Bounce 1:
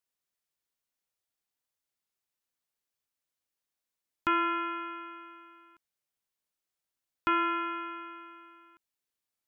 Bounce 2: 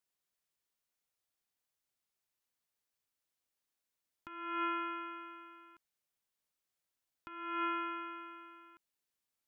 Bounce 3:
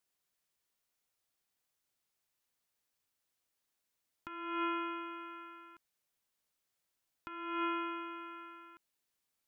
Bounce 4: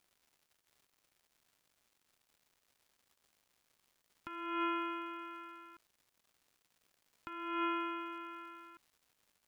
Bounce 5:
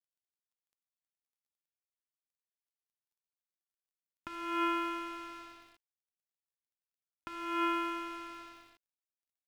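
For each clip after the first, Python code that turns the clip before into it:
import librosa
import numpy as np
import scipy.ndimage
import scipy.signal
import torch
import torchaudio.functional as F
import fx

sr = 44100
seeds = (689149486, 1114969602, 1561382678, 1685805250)

y1 = fx.over_compress(x, sr, threshold_db=-33.0, ratio=-0.5)
y1 = F.gain(torch.from_numpy(y1), -4.0).numpy()
y2 = fx.dynamic_eq(y1, sr, hz=1600.0, q=1.2, threshold_db=-50.0, ratio=4.0, max_db=-6)
y2 = F.gain(torch.from_numpy(y2), 3.5).numpy()
y3 = fx.dmg_crackle(y2, sr, seeds[0], per_s=320.0, level_db=-59.0)
y4 = np.sign(y3) * np.maximum(np.abs(y3) - 10.0 ** (-54.0 / 20.0), 0.0)
y4 = F.gain(torch.from_numpy(y4), 4.5).numpy()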